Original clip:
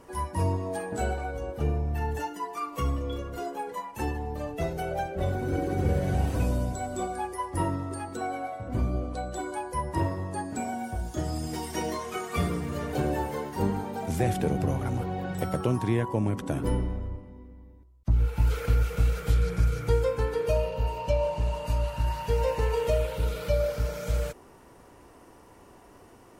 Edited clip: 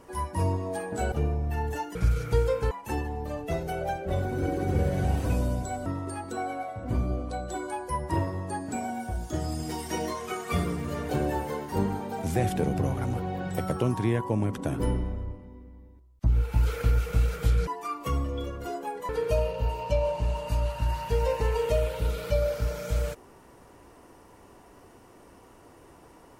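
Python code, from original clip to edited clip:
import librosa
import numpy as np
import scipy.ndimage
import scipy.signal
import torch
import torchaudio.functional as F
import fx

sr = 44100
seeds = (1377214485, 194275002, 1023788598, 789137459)

y = fx.edit(x, sr, fx.cut(start_s=1.12, length_s=0.44),
    fx.swap(start_s=2.39, length_s=1.42, other_s=19.51, other_length_s=0.76),
    fx.cut(start_s=6.96, length_s=0.74), tone=tone)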